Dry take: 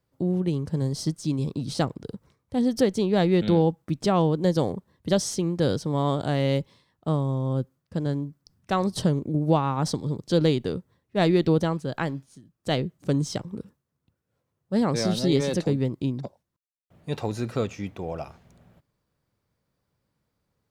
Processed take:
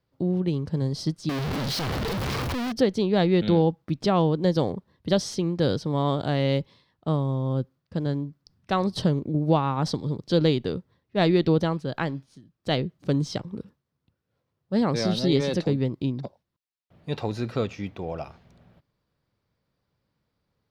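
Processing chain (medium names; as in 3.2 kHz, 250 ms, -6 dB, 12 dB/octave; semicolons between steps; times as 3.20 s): 1.29–2.72 s: one-bit comparator; resonant high shelf 5.9 kHz -7.5 dB, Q 1.5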